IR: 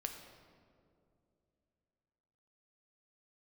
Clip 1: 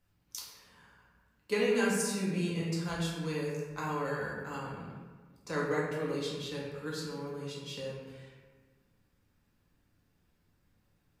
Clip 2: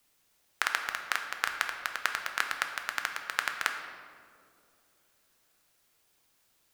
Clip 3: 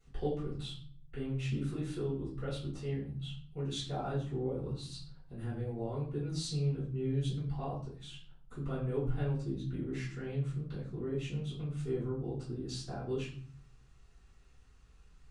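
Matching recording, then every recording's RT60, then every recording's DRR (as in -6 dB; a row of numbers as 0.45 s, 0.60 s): 2; 1.4 s, 2.6 s, 0.50 s; -5.5 dB, 4.0 dB, -11.5 dB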